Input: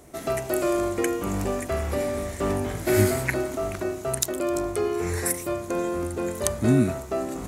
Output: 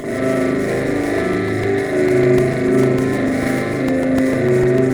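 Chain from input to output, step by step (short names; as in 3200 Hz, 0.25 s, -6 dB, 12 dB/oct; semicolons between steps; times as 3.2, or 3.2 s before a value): per-bin compression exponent 0.2; flange 0.45 Hz, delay 7.5 ms, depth 9.7 ms, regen -47%; bell 71 Hz -12.5 dB 1.2 oct; plain phase-vocoder stretch 0.66×; spectral gate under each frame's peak -20 dB strong; on a send: thinning echo 66 ms, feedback 80%, level -16 dB; on the sum: spring tank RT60 1.4 s, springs 38 ms, chirp 35 ms, DRR -9 dB; crackling interface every 0.15 s, samples 128, repeat, from 0.88; running maximum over 5 samples; gain -2 dB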